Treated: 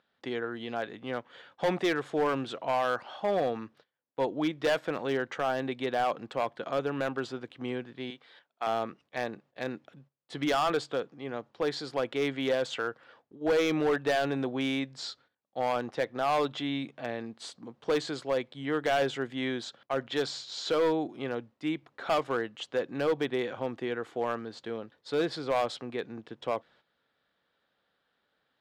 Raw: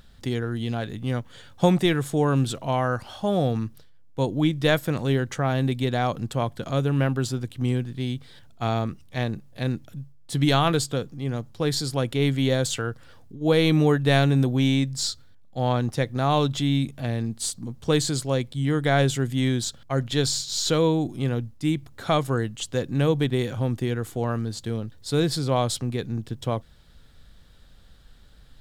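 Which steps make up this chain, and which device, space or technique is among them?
8.10–8.67 s: high-pass 550 Hz 6 dB/octave; walkie-talkie (band-pass 420–2600 Hz; hard clipper -21.5 dBFS, distortion -11 dB; gate -58 dBFS, range -11 dB)

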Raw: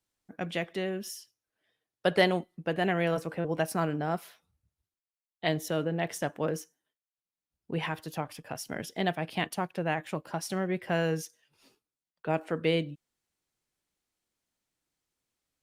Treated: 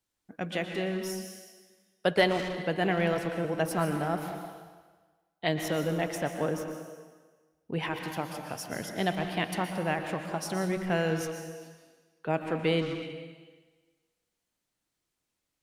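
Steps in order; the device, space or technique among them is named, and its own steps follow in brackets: saturated reverb return (on a send at -3 dB: reverberation RT60 1.4 s, pre-delay 112 ms + saturation -28 dBFS, distortion -10 dB); 6.15–7.74 s: on the sum: peaking EQ 7.6 kHz -4.5 dB 1.7 oct

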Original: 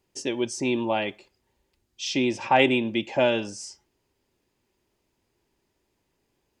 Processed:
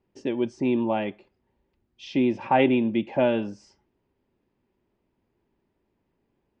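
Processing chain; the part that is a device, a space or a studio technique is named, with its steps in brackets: phone in a pocket (low-pass 3.7 kHz 12 dB/octave; peaking EQ 210 Hz +5 dB 0.84 oct; treble shelf 2.4 kHz -11 dB)

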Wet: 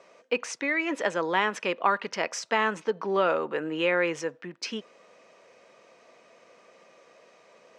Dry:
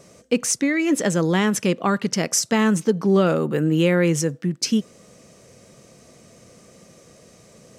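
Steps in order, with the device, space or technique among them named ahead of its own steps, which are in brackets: tin-can telephone (band-pass 610–2800 Hz; small resonant body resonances 960/2500 Hz, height 7 dB)

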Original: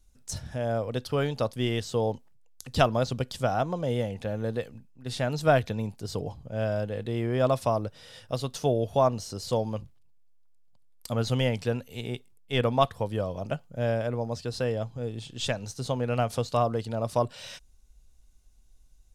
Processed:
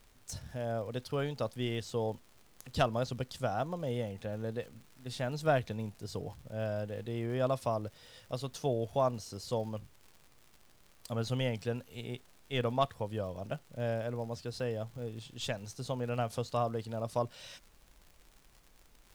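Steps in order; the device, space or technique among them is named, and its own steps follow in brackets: record under a worn stylus (tracing distortion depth 0.028 ms; crackle 110 per s -39 dBFS; pink noise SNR 30 dB); trim -7 dB

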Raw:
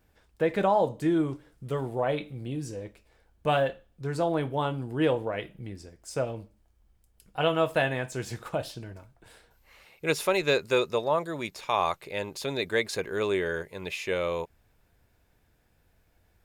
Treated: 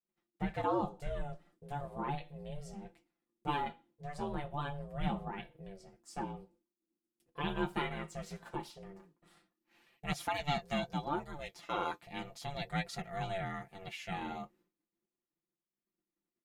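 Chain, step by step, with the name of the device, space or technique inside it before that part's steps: alien voice (ring modulator 290 Hz; flange 0.38 Hz, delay 4.3 ms, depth 7.4 ms, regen -46%); expander -59 dBFS; treble shelf 9 kHz -3.5 dB; comb 5.8 ms, depth 69%; trim -5 dB

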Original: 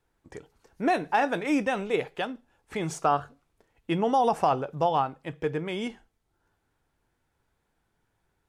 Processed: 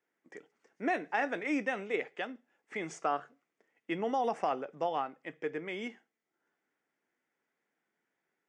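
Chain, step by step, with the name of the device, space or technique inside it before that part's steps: television speaker (cabinet simulation 210–7500 Hz, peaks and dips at 930 Hz -5 dB, 2 kHz +9 dB, 4.1 kHz -9 dB); trim -7 dB

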